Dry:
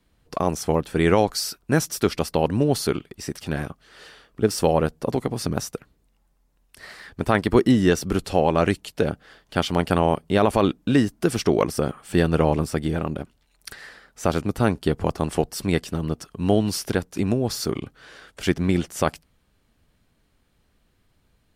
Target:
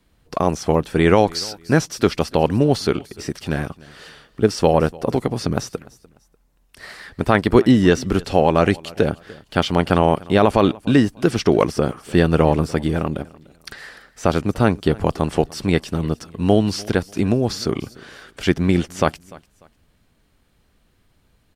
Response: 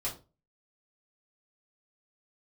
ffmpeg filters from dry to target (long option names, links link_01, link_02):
-filter_complex "[0:a]aecho=1:1:296|592:0.075|0.0217,acrossover=split=6300[link_01][link_02];[link_02]acompressor=threshold=-48dB:ratio=4:attack=1:release=60[link_03];[link_01][link_03]amix=inputs=2:normalize=0,volume=4dB"